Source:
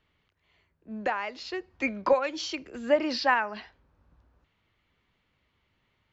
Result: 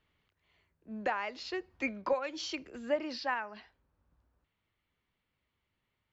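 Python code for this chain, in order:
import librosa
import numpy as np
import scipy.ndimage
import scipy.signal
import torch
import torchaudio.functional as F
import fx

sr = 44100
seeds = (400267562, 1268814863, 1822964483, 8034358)

y = fx.rider(x, sr, range_db=4, speed_s=0.5)
y = y * 10.0 ** (-6.5 / 20.0)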